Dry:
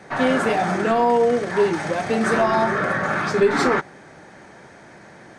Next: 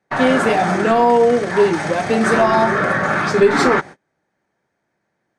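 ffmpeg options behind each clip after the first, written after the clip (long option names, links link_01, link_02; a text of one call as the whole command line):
ffmpeg -i in.wav -af "agate=range=-32dB:threshold=-35dB:ratio=16:detection=peak,volume=4.5dB" out.wav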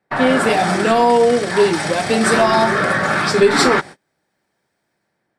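ffmpeg -i in.wav -filter_complex "[0:a]bandreject=frequency=6400:width=5.2,acrossover=split=3400[link_01][link_02];[link_02]dynaudnorm=framelen=130:gausssize=7:maxgain=10.5dB[link_03];[link_01][link_03]amix=inputs=2:normalize=0" out.wav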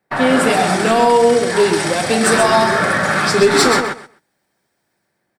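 ffmpeg -i in.wav -af "highshelf=frequency=7900:gain=8.5,volume=5dB,asoftclip=hard,volume=-5dB,aecho=1:1:128|256|384:0.473|0.0757|0.0121" out.wav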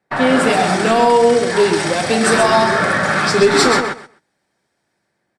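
ffmpeg -i in.wav -af "lowpass=8800" out.wav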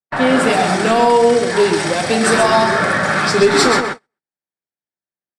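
ffmpeg -i in.wav -af "agate=range=-30dB:threshold=-24dB:ratio=16:detection=peak" out.wav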